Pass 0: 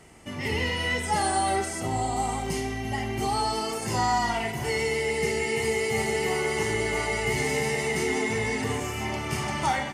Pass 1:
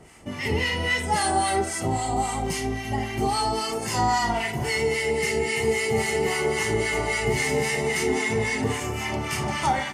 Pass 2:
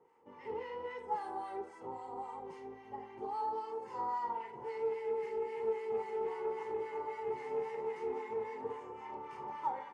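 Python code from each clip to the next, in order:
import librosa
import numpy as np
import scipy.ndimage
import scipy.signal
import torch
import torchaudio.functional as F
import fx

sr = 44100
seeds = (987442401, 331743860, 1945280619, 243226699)

y1 = fx.harmonic_tremolo(x, sr, hz=3.7, depth_pct=70, crossover_hz=980.0)
y1 = y1 * 10.0 ** (5.5 / 20.0)
y2 = fx.double_bandpass(y1, sr, hz=660.0, octaves=0.91)
y2 = fx.doppler_dist(y2, sr, depth_ms=0.12)
y2 = y2 * 10.0 ** (-7.0 / 20.0)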